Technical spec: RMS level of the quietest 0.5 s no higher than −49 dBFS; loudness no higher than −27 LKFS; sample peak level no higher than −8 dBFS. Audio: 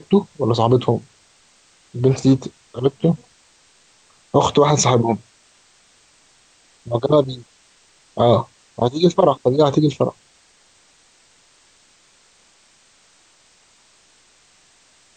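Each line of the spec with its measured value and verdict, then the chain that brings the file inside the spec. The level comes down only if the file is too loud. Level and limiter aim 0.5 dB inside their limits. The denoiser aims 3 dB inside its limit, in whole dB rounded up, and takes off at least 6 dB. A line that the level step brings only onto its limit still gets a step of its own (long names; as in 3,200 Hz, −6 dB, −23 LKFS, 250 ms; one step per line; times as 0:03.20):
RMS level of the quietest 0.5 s −55 dBFS: in spec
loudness −18.0 LKFS: out of spec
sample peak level −3.5 dBFS: out of spec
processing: level −9.5 dB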